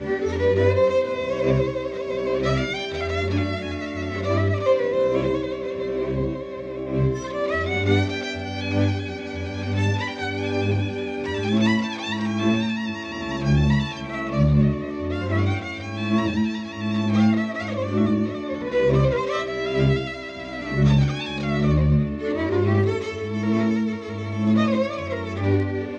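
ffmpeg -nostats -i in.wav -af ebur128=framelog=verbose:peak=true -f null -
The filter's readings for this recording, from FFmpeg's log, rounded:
Integrated loudness:
  I:         -23.2 LUFS
  Threshold: -33.2 LUFS
Loudness range:
  LRA:         2.5 LU
  Threshold: -43.3 LUFS
  LRA low:   -24.6 LUFS
  LRA high:  -22.1 LUFS
True peak:
  Peak:       -7.5 dBFS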